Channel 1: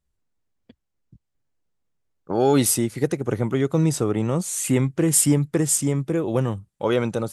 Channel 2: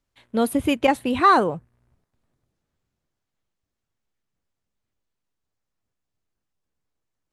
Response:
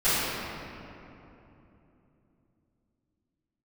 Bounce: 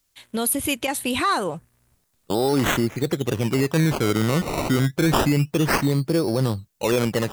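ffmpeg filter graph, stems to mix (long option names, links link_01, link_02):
-filter_complex "[0:a]agate=range=-15dB:threshold=-37dB:ratio=16:detection=peak,acrusher=samples=18:mix=1:aa=0.000001:lfo=1:lforange=18:lforate=0.28,volume=2.5dB[link_01];[1:a]alimiter=limit=-18.5dB:level=0:latency=1:release=153,crystalizer=i=6:c=0,volume=0.5dB[link_02];[link_01][link_02]amix=inputs=2:normalize=0,alimiter=limit=-12dB:level=0:latency=1:release=31"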